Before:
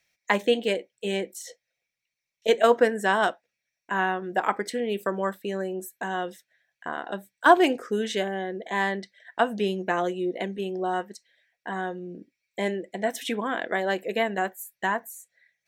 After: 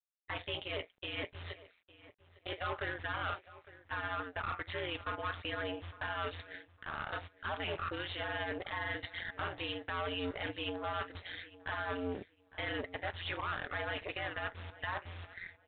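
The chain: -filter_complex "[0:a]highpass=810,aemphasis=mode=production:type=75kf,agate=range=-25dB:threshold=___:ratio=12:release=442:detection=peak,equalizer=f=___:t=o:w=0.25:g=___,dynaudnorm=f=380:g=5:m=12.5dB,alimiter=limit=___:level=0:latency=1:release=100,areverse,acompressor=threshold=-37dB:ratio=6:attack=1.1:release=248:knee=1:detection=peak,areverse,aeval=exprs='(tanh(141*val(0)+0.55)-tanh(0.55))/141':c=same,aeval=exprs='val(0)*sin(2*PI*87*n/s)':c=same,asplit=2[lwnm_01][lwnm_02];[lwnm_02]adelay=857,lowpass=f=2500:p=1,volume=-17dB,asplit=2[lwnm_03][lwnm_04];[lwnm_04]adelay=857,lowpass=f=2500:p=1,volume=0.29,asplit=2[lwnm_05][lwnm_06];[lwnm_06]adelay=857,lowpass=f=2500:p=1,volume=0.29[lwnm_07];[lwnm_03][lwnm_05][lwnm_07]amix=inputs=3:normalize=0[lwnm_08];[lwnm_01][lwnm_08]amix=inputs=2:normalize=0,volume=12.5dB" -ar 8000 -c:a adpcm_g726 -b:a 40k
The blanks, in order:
-52dB, 1300, 11.5, -10dB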